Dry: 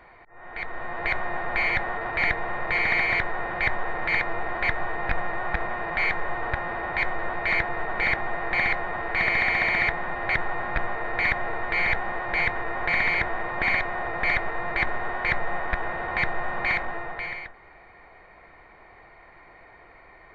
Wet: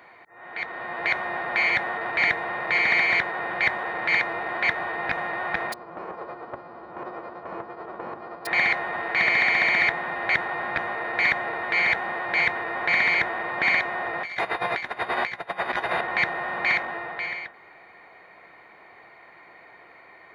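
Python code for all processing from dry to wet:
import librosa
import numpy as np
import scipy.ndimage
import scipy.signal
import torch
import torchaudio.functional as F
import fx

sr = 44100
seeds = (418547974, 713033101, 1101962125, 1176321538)

y = fx.envelope_flatten(x, sr, power=0.1, at=(5.72, 8.45), fade=0.02)
y = fx.lowpass(y, sr, hz=1100.0, slope=24, at=(5.72, 8.45), fade=0.02)
y = fx.hum_notches(y, sr, base_hz=50, count=9, at=(5.72, 8.45), fade=0.02)
y = fx.chain(y, sr, fx.high_shelf(hz=3700.0, db=10.0),
    fx.doubler(ms=16.0, db=-3.5),
    fx.over_compress(threshold_db=-26.0, ratio=-0.5), at=(14.23, 16.01))
y = scipy.signal.sosfilt(scipy.signal.butter(2, 160.0, 'highpass', fs=sr, output='sos'), y)
y = fx.high_shelf(y, sr, hz=3200.0, db=8.5)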